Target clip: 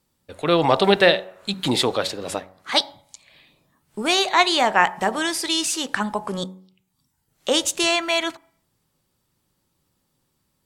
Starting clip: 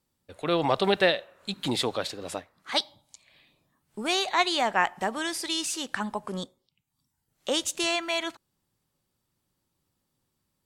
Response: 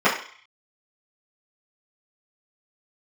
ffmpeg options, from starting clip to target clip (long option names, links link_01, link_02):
-filter_complex "[0:a]bandreject=frequency=93.58:width_type=h:width=4,bandreject=frequency=187.16:width_type=h:width=4,bandreject=frequency=280.74:width_type=h:width=4,bandreject=frequency=374.32:width_type=h:width=4,bandreject=frequency=467.9:width_type=h:width=4,bandreject=frequency=561.48:width_type=h:width=4,bandreject=frequency=655.06:width_type=h:width=4,bandreject=frequency=748.64:width_type=h:width=4,bandreject=frequency=842.22:width_type=h:width=4,bandreject=frequency=935.8:width_type=h:width=4,asplit=2[link_01][link_02];[1:a]atrim=start_sample=2205,lowpass=1700[link_03];[link_02][link_03]afir=irnorm=-1:irlink=0,volume=-36dB[link_04];[link_01][link_04]amix=inputs=2:normalize=0,volume=7dB"